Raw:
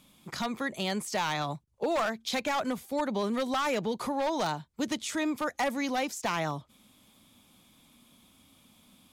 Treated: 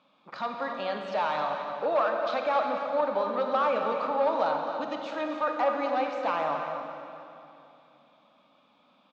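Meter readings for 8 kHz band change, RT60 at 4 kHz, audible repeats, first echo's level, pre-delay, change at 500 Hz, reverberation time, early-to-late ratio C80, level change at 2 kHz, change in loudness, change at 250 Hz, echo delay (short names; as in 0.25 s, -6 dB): under -20 dB, 2.5 s, 1, -9.5 dB, 26 ms, +5.5 dB, 2.9 s, 3.5 dB, -1.0 dB, +2.5 dB, -5.5 dB, 0.264 s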